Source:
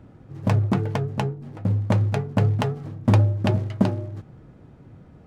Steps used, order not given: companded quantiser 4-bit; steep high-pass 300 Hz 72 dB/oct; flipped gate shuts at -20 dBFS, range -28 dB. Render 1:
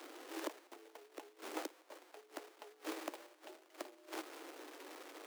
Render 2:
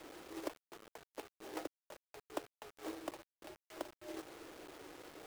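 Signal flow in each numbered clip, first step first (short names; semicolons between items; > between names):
companded quantiser > flipped gate > steep high-pass; flipped gate > steep high-pass > companded quantiser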